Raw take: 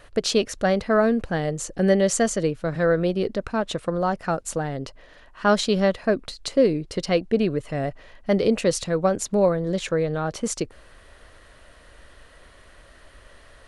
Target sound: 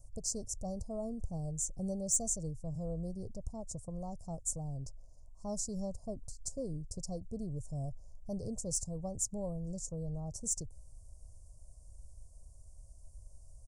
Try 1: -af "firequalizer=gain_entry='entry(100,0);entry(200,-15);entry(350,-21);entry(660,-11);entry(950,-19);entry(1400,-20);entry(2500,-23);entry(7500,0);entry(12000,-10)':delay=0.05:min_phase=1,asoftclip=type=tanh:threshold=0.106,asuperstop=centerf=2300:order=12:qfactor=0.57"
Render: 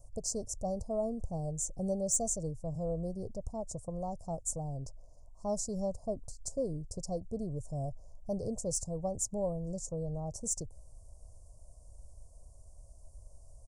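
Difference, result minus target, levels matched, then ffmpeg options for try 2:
500 Hz band +5.0 dB
-af "firequalizer=gain_entry='entry(100,0);entry(200,-15);entry(350,-21);entry(660,-11);entry(950,-19);entry(1400,-20);entry(2500,-23);entry(7500,0);entry(12000,-10)':delay=0.05:min_phase=1,asoftclip=type=tanh:threshold=0.106,asuperstop=centerf=2300:order=12:qfactor=0.57,equalizer=f=660:w=0.57:g=-7.5"

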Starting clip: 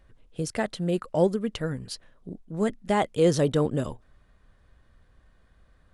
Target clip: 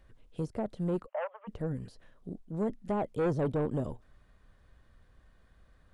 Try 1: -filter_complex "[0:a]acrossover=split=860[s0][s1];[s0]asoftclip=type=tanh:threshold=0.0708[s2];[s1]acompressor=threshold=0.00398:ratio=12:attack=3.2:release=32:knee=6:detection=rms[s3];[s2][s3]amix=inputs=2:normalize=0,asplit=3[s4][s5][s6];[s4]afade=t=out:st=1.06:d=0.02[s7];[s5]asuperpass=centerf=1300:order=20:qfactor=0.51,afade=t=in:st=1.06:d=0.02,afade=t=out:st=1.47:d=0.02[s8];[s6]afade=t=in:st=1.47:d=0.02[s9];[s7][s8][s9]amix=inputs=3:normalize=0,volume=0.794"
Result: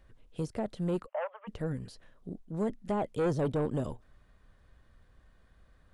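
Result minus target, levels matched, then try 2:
compression: peak gain reduction -7.5 dB
-filter_complex "[0:a]acrossover=split=860[s0][s1];[s0]asoftclip=type=tanh:threshold=0.0708[s2];[s1]acompressor=threshold=0.00158:ratio=12:attack=3.2:release=32:knee=6:detection=rms[s3];[s2][s3]amix=inputs=2:normalize=0,asplit=3[s4][s5][s6];[s4]afade=t=out:st=1.06:d=0.02[s7];[s5]asuperpass=centerf=1300:order=20:qfactor=0.51,afade=t=in:st=1.06:d=0.02,afade=t=out:st=1.47:d=0.02[s8];[s6]afade=t=in:st=1.47:d=0.02[s9];[s7][s8][s9]amix=inputs=3:normalize=0,volume=0.794"

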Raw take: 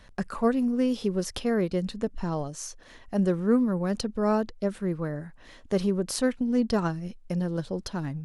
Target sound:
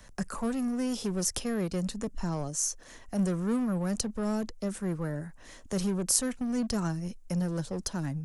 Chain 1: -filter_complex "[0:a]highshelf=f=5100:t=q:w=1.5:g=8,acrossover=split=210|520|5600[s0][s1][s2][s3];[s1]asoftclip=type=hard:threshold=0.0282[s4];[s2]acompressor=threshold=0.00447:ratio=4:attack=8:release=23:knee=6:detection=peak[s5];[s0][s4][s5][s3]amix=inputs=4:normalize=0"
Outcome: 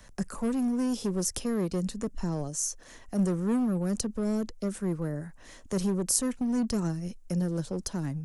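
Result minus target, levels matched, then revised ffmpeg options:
compression: peak gain reduction +5.5 dB; hard clipper: distortion -4 dB
-filter_complex "[0:a]highshelf=f=5100:t=q:w=1.5:g=8,acrossover=split=210|520|5600[s0][s1][s2][s3];[s1]asoftclip=type=hard:threshold=0.0119[s4];[s2]acompressor=threshold=0.0106:ratio=4:attack=8:release=23:knee=6:detection=peak[s5];[s0][s4][s5][s3]amix=inputs=4:normalize=0"

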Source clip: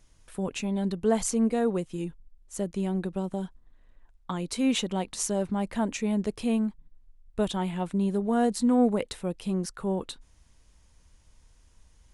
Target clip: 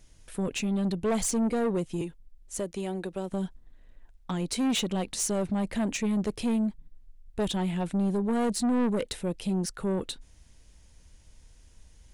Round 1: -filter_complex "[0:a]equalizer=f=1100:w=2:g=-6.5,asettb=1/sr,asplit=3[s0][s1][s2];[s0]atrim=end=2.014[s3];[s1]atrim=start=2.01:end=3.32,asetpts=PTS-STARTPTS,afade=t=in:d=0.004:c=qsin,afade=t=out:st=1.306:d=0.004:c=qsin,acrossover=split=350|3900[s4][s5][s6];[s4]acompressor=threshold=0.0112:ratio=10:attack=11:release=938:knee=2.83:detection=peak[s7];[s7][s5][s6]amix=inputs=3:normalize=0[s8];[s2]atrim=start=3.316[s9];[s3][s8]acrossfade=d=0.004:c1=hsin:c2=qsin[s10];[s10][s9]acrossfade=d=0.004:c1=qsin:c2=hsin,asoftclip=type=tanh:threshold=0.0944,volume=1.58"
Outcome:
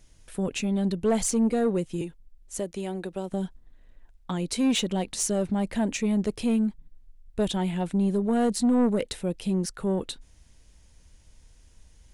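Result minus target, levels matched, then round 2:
saturation: distortion -6 dB
-filter_complex "[0:a]equalizer=f=1100:w=2:g=-6.5,asettb=1/sr,asplit=3[s0][s1][s2];[s0]atrim=end=2.014[s3];[s1]atrim=start=2.01:end=3.32,asetpts=PTS-STARTPTS,afade=t=in:d=0.004:c=qsin,afade=t=out:st=1.306:d=0.004:c=qsin,acrossover=split=350|3900[s4][s5][s6];[s4]acompressor=threshold=0.0112:ratio=10:attack=11:release=938:knee=2.83:detection=peak[s7];[s7][s5][s6]amix=inputs=3:normalize=0[s8];[s2]atrim=start=3.316[s9];[s3][s8]acrossfade=d=0.004:c1=hsin:c2=qsin[s10];[s10][s9]acrossfade=d=0.004:c1=qsin:c2=hsin,asoftclip=type=tanh:threshold=0.0473,volume=1.58"

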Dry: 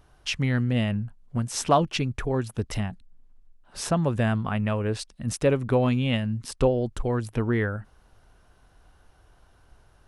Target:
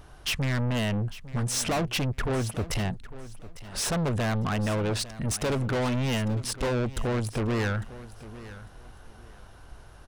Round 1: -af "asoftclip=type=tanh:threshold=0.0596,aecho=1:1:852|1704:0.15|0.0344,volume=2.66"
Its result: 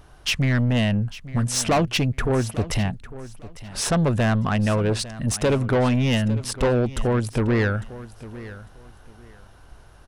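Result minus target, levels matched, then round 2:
saturation: distortion -5 dB
-af "asoftclip=type=tanh:threshold=0.0211,aecho=1:1:852|1704:0.15|0.0344,volume=2.66"

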